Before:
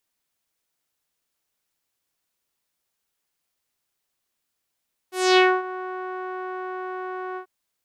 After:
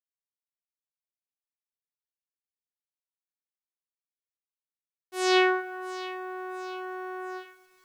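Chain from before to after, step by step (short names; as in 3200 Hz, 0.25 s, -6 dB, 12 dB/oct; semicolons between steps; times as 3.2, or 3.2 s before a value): split-band echo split 1800 Hz, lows 0.129 s, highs 0.682 s, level -15 dB; requantised 10-bit, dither none; gain -4.5 dB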